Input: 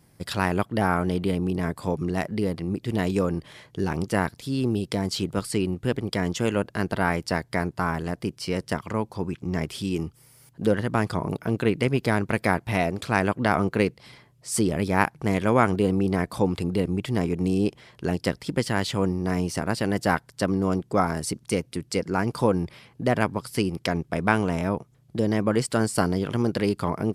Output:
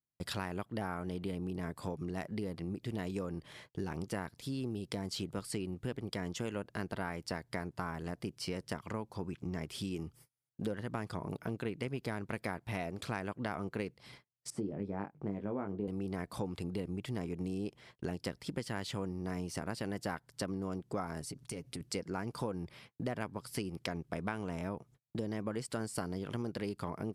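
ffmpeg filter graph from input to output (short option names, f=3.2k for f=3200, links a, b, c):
-filter_complex "[0:a]asettb=1/sr,asplit=3[a][b][c];[a]atrim=end=14.504[d];[b]atrim=start=14.5:end=15.88,asetpts=PTS-STARTPTS,afade=t=in:d=0.004:c=qsin,afade=t=out:st=1.376:d=0.004:c=qsin,bandpass=f=280:t=q:w=0.67,asplit=2[e][f];[f]adelay=20,volume=-6dB[g];[e][g]amix=inputs=2:normalize=0,atrim=end_sample=60858[h];[c]atrim=start=15.876[i];[d][h]acrossfade=d=0.004:c1=hsin:c2=qsin[j];[j][i]acrossfade=d=0.004:c1=qsin:c2=hsin,asettb=1/sr,asplit=3[k][l][m];[k]atrim=end=21.214[n];[l]atrim=start=21.21:end=21.81,asetpts=PTS-STARTPTS,afade=t=in:d=0.004:c=qsin,afade=t=out:st=0.596:d=0.004:c=qsin,lowshelf=f=93:g=7.5,aecho=1:1:7.2:0.43,atrim=end_sample=26460,acompressor=threshold=-33dB:ratio=5:attack=3.2:release=140:knee=1:detection=peak[o];[m]atrim=start=21.806[p];[n][o]acrossfade=d=0.004:c1=hsin:c2=qsin[q];[q][p]acrossfade=d=0.004:c1=qsin:c2=hsin,agate=range=-36dB:threshold=-48dB:ratio=16:detection=peak,acompressor=threshold=-30dB:ratio=4,volume=-5.5dB"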